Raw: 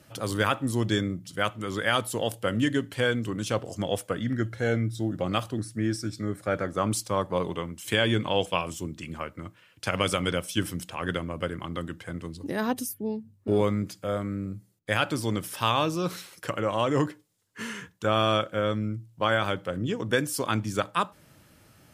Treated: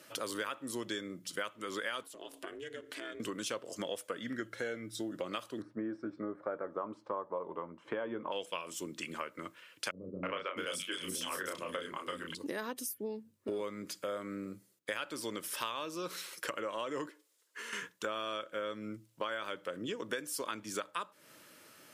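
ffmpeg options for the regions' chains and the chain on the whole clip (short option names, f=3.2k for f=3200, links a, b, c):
-filter_complex "[0:a]asettb=1/sr,asplit=3[a][b][c];[a]atrim=end=2.034[d];[b]atrim=start=2.03:end=3.2,asetpts=PTS-STARTPTS,afade=t=in:d=0.004:c=qsin,afade=t=out:st=1.166:d=0.004:c=qsin,highshelf=f=9.3k:g=-6.5,acompressor=threshold=-37dB:ratio=6:attack=3.2:release=140:knee=1:detection=peak,aeval=exprs='val(0)*sin(2*PI*160*n/s)':c=same[e];[c]atrim=start=3.196[f];[d][e]acrossfade=d=0.004:c1=hsin:c2=qsin[g];[g][f]acrossfade=d=0.004:c1=qsin:c2=hsin,asettb=1/sr,asplit=3[h][i][j];[h]atrim=end=5.624[k];[i]atrim=start=5.62:end=8.32,asetpts=PTS-STARTPTS,afade=t=in:d=0.004:c=qsin,afade=t=out:st=2.696:d=0.004:c=qsin,lowpass=f=930:t=q:w=1.8,asplit=2[l][m];[m]adelay=13,volume=-12dB[n];[l][n]amix=inputs=2:normalize=0,atrim=end_sample=119070[o];[j]atrim=start=8.316[p];[k][o]acrossfade=d=0.004:c1=hsin:c2=qsin[q];[q][p]acrossfade=d=0.004:c1=qsin:c2=hsin,asettb=1/sr,asplit=3[r][s][t];[r]atrim=end=9.914[u];[s]atrim=start=9.91:end=12.35,asetpts=PTS-STARTPTS,afade=t=in:d=0.004:c=qsin,afade=t=out:st=2.436:d=0.004:c=qsin,asplit=2[v][w];[w]adelay=32,volume=-3.5dB[x];[v][x]amix=inputs=2:normalize=0,atrim=end_sample=107604,acrossover=split=330|2800[y][z][aa];[z]adelay=320[ab];[aa]adelay=660[ac];[y][ab][ac]amix=inputs=3:normalize=0,atrim=end_sample=107604[ad];[t]atrim=start=12.346[ae];[u][ad]acrossfade=d=0.004:c1=hsin:c2=qsin[af];[af][ae]acrossfade=d=0.004:c1=qsin:c2=hsin,asettb=1/sr,asplit=3[ag][ah][ai];[ag]atrim=end=17.094[aj];[ah]atrim=start=17.09:end=17.73,asetpts=PTS-STARTPTS,afade=t=in:d=0.004:c=qsin,afade=t=out:st=0.636:d=0.004:c=qsin,highpass=f=310:w=0.5412,highpass=f=310:w=1.3066,acompressor=threshold=-43dB:ratio=6:attack=3.2:release=140:knee=1:detection=peak[ak];[ai]atrim=start=17.726[al];[aj][ak]acrossfade=d=0.004:c1=hsin:c2=qsin[am];[am][al]acrossfade=d=0.004:c1=qsin:c2=hsin,highpass=370,equalizer=f=760:t=o:w=0.28:g=-10.5,acompressor=threshold=-38dB:ratio=6,volume=2.5dB"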